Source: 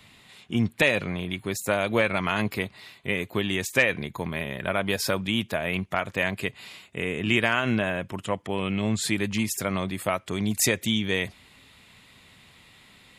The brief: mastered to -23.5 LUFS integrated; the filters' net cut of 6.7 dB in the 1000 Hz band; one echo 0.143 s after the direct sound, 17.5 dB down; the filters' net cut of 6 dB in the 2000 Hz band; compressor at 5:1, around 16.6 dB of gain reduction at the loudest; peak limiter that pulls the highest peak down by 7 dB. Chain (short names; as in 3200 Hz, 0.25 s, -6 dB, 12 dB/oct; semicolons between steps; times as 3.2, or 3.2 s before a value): bell 1000 Hz -8 dB; bell 2000 Hz -5.5 dB; compressor 5:1, threshold -39 dBFS; limiter -30.5 dBFS; echo 0.143 s -17.5 dB; gain +20 dB